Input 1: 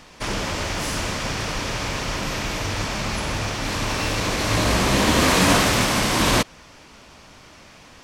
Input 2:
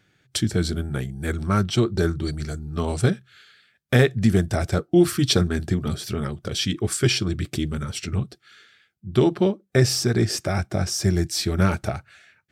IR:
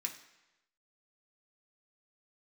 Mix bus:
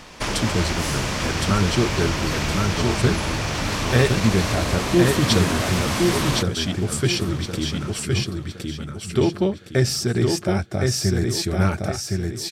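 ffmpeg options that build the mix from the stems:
-filter_complex "[0:a]acompressor=threshold=-25dB:ratio=12,volume=-1dB,asplit=2[link_01][link_02];[link_02]volume=-20.5dB[link_03];[1:a]volume=-6dB,asplit=2[link_04][link_05];[link_05]volume=-3.5dB[link_06];[link_03][link_06]amix=inputs=2:normalize=0,aecho=0:1:1064|2128|3192|4256|5320:1|0.35|0.122|0.0429|0.015[link_07];[link_01][link_04][link_07]amix=inputs=3:normalize=0,acontrast=27"

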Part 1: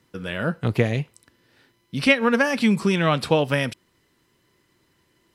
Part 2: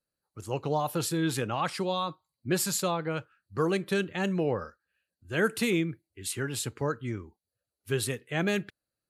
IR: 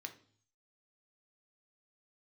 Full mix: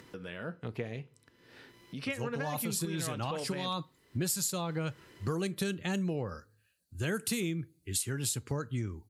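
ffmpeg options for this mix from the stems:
-filter_complex "[0:a]equalizer=frequency=450:width=5.5:gain=5,acompressor=mode=upward:threshold=-21dB:ratio=2.5,volume=-17dB,asplit=3[link_01][link_02][link_03];[link_02]volume=-6.5dB[link_04];[1:a]bass=frequency=250:gain=8,treble=frequency=4000:gain=15,adelay=1700,volume=1dB,asplit=2[link_05][link_06];[link_06]volume=-19dB[link_07];[link_03]apad=whole_len=476162[link_08];[link_05][link_08]sidechaincompress=threshold=-41dB:ratio=8:attack=8.7:release=164[link_09];[2:a]atrim=start_sample=2205[link_10];[link_04][link_07]amix=inputs=2:normalize=0[link_11];[link_11][link_10]afir=irnorm=-1:irlink=0[link_12];[link_01][link_09][link_12]amix=inputs=3:normalize=0,highshelf=frequency=6200:gain=-5.5,acompressor=threshold=-31dB:ratio=5"

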